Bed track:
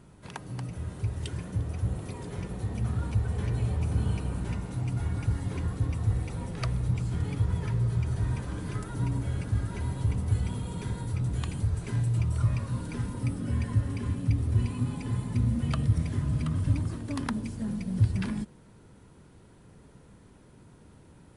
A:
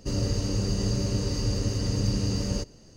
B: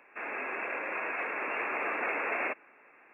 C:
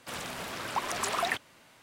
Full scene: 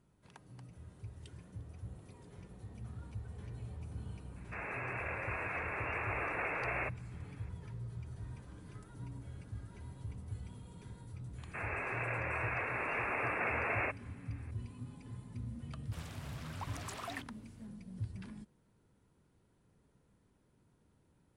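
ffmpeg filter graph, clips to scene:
ffmpeg -i bed.wav -i cue0.wav -i cue1.wav -i cue2.wav -filter_complex "[2:a]asplit=2[link_01][link_02];[0:a]volume=-17dB[link_03];[link_01]atrim=end=3.13,asetpts=PTS-STARTPTS,volume=-5dB,afade=type=in:duration=0.004:curve=hsin,afade=type=out:start_time=3.126:duration=0.004:curve=hsin,adelay=4360[link_04];[link_02]atrim=end=3.13,asetpts=PTS-STARTPTS,volume=-3dB,afade=type=in:duration=0.004:curve=hsin,afade=type=out:start_time=3.126:duration=0.004:curve=hsin,adelay=501858S[link_05];[3:a]atrim=end=1.82,asetpts=PTS-STARTPTS,volume=-14dB,afade=type=in:duration=0.004:curve=hsin,afade=type=out:start_time=1.816:duration=0.004:curve=hsin,adelay=15850[link_06];[link_03][link_04][link_05][link_06]amix=inputs=4:normalize=0" out.wav

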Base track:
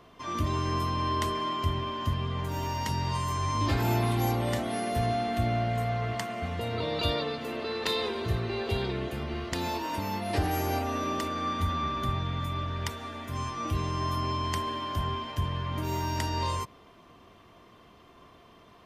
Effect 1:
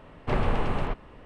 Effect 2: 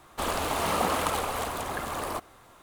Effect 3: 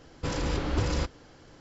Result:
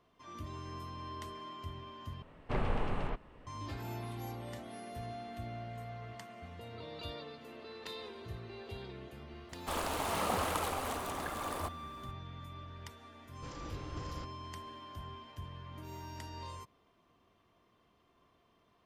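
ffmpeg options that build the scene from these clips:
ffmpeg -i bed.wav -i cue0.wav -i cue1.wav -i cue2.wav -filter_complex "[0:a]volume=-15.5dB,asplit=2[link_01][link_02];[link_01]atrim=end=2.224[link_03];[1:a]atrim=end=1.25,asetpts=PTS-STARTPTS,volume=-8dB[link_04];[link_02]atrim=start=3.466[link_05];[2:a]atrim=end=2.62,asetpts=PTS-STARTPTS,volume=-7dB,afade=type=in:duration=0.004:curve=hsin,afade=type=out:start_time=2.616:duration=0.004:curve=hsin,adelay=9490[link_06];[3:a]atrim=end=1.6,asetpts=PTS-STARTPTS,volume=-17dB,afade=type=in:duration=0.004:curve=hsin,afade=type=out:start_time=1.596:duration=0.004:curve=hsin,adelay=13190[link_07];[link_03][link_04]acrossfade=duration=0.004:curve1=hsin:curve2=hsin[link_08];[link_08][link_05]acrossfade=duration=0.004:curve1=hsin:curve2=hsin[link_09];[link_09][link_06][link_07]amix=inputs=3:normalize=0" out.wav

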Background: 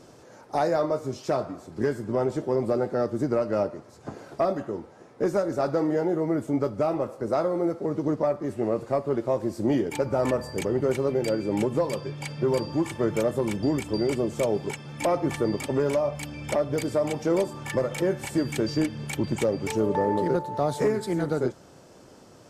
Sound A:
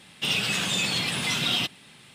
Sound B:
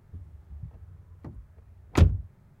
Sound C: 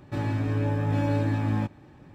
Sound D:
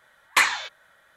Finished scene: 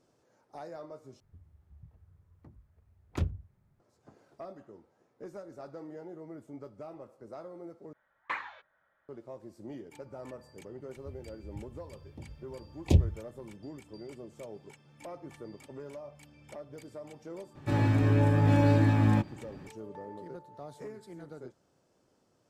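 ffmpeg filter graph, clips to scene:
ffmpeg -i bed.wav -i cue0.wav -i cue1.wav -i cue2.wav -i cue3.wav -filter_complex "[2:a]asplit=2[link_01][link_02];[0:a]volume=-20dB[link_03];[4:a]lowpass=1600[link_04];[link_02]asuperstop=centerf=1400:order=4:qfactor=0.8[link_05];[3:a]dynaudnorm=framelen=100:gausssize=3:maxgain=3dB[link_06];[link_03]asplit=3[link_07][link_08][link_09];[link_07]atrim=end=1.204[link_10];[link_01]atrim=end=2.6,asetpts=PTS-STARTPTS,volume=-12.5dB[link_11];[link_08]atrim=start=3.796:end=7.934[link_12];[link_04]atrim=end=1.16,asetpts=PTS-STARTPTS,volume=-12.5dB[link_13];[link_09]atrim=start=9.086[link_14];[link_05]atrim=end=2.6,asetpts=PTS-STARTPTS,volume=-3.5dB,afade=type=in:duration=0.004:curve=hsin,afade=type=out:start_time=2.596:duration=0.004:curve=hsin,adelay=10930[link_15];[link_06]atrim=end=2.14,asetpts=PTS-STARTPTS,volume=-1dB,afade=type=in:duration=0.004:curve=hsin,afade=type=out:start_time=2.136:duration=0.004:curve=hsin,adelay=17550[link_16];[link_10][link_11]acrossfade=duration=0.004:curve1=hsin:curve2=hsin[link_17];[link_17][link_12]acrossfade=duration=0.004:curve1=hsin:curve2=hsin[link_18];[link_18][link_13]acrossfade=duration=0.004:curve1=hsin:curve2=hsin[link_19];[link_19][link_14]acrossfade=duration=0.004:curve1=hsin:curve2=hsin[link_20];[link_20][link_15][link_16]amix=inputs=3:normalize=0" out.wav

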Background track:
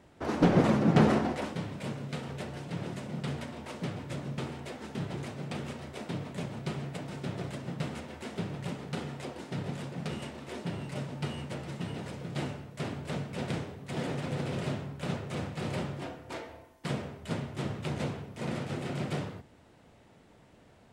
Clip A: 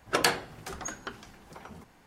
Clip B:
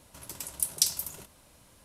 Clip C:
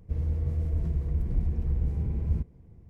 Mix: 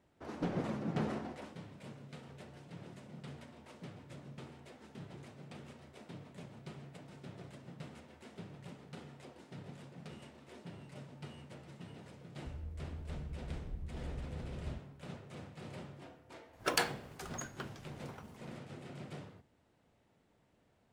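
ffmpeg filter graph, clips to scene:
ffmpeg -i bed.wav -i cue0.wav -i cue1.wav -i cue2.wav -filter_complex "[0:a]volume=-13.5dB[link_01];[1:a]acrusher=bits=6:mode=log:mix=0:aa=0.000001[link_02];[3:a]atrim=end=2.89,asetpts=PTS-STARTPTS,volume=-16.5dB,afade=type=in:duration=0.004:curve=hsin,afade=type=out:start_time=2.886:duration=0.004:curve=hsin,adelay=545076S[link_03];[link_02]atrim=end=2.06,asetpts=PTS-STARTPTS,volume=-7dB,afade=type=in:duration=0.004:curve=hsin,afade=type=out:start_time=2.056:duration=0.004:curve=hsin,adelay=16530[link_04];[link_01][link_03][link_04]amix=inputs=3:normalize=0" out.wav

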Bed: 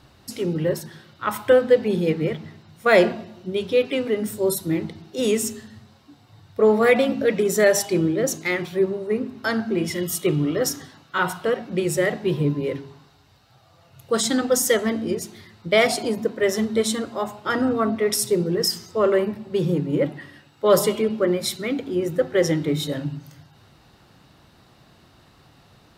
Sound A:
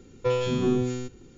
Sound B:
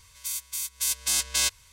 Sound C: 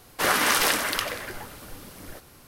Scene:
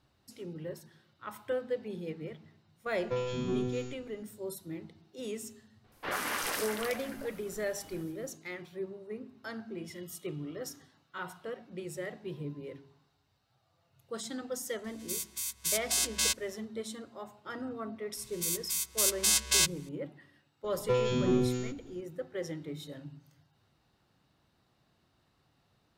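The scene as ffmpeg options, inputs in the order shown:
ffmpeg -i bed.wav -i cue0.wav -i cue1.wav -i cue2.wav -filter_complex "[1:a]asplit=2[link_01][link_02];[2:a]asplit=2[link_03][link_04];[0:a]volume=-18dB[link_05];[3:a]acrossover=split=3900[link_06][link_07];[link_07]adelay=80[link_08];[link_06][link_08]amix=inputs=2:normalize=0[link_09];[link_01]atrim=end=1.37,asetpts=PTS-STARTPTS,volume=-8.5dB,afade=type=in:duration=0.004:curve=hsin,afade=type=out:start_time=1.366:duration=0.004:curve=hsin,adelay=2860[link_10];[link_09]atrim=end=2.47,asetpts=PTS-STARTPTS,volume=-11.5dB,afade=type=in:duration=0.004:curve=hsin,afade=type=out:start_time=2.466:duration=0.004:curve=hsin,adelay=5840[link_11];[link_03]atrim=end=1.72,asetpts=PTS-STARTPTS,volume=-4.5dB,afade=type=in:duration=0.004:curve=hsin,afade=type=out:start_time=1.716:duration=0.004:curve=hsin,adelay=14840[link_12];[link_04]atrim=end=1.72,asetpts=PTS-STARTPTS,volume=-1dB,afade=type=in:duration=0.004:curve=hsin,afade=type=out:start_time=1.716:duration=0.004:curve=hsin,adelay=18170[link_13];[link_02]atrim=end=1.37,asetpts=PTS-STARTPTS,volume=-3.5dB,afade=type=in:duration=0.004:curve=hsin,afade=type=out:start_time=1.366:duration=0.004:curve=hsin,adelay=20640[link_14];[link_05][link_10][link_11][link_12][link_13][link_14]amix=inputs=6:normalize=0" out.wav

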